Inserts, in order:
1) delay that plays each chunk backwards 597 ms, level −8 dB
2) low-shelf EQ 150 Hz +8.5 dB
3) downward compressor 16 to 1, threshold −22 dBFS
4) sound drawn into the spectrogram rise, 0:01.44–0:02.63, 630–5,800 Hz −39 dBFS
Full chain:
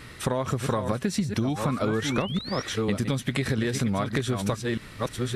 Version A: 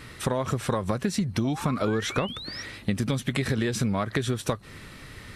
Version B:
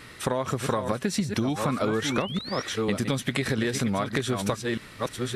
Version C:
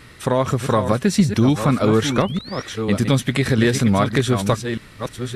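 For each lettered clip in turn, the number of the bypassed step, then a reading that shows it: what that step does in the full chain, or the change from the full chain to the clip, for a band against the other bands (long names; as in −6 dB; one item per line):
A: 1, change in momentary loudness spread +5 LU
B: 2, 125 Hz band −4.0 dB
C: 3, average gain reduction 6.0 dB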